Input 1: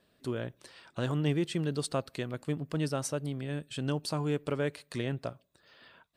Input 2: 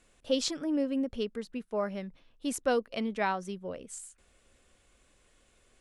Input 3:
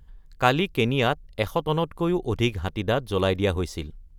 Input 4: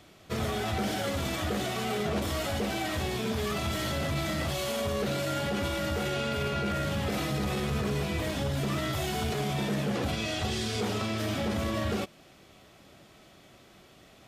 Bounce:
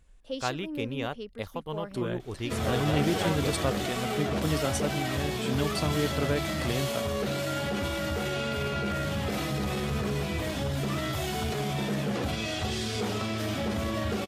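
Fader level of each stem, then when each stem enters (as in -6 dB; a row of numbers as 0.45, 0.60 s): +2.0, -7.0, -11.5, 0.0 dB; 1.70, 0.00, 0.00, 2.20 s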